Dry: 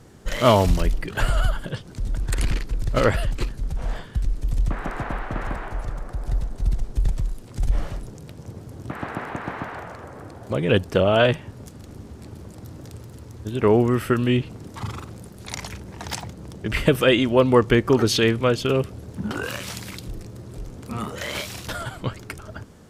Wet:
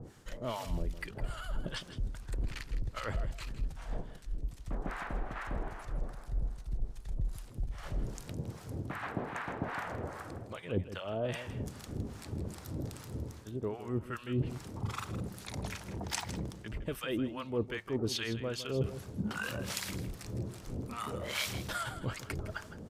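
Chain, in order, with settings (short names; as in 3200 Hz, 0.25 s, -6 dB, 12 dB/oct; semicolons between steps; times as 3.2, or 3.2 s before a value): reverse; compressor 6:1, threshold -33 dBFS, peak gain reduction 21 dB; reverse; harmonic tremolo 2.5 Hz, depth 100%, crossover 780 Hz; echo 0.16 s -12.5 dB; gain +3.5 dB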